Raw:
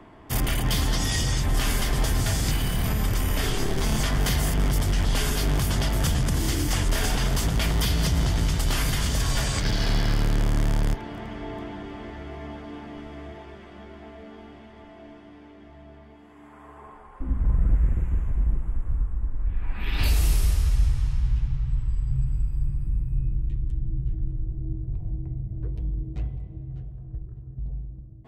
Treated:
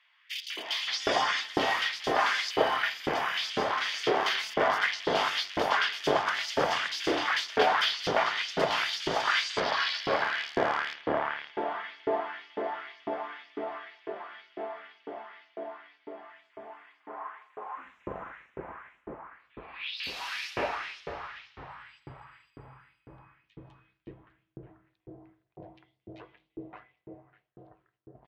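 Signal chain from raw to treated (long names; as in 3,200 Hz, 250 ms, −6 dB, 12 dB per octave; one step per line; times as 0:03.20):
auto-filter high-pass saw up 2 Hz 390–5,700 Hz
high-frequency loss of the air 270 metres
multiband delay without the direct sound highs, lows 570 ms, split 2,400 Hz
level +6.5 dB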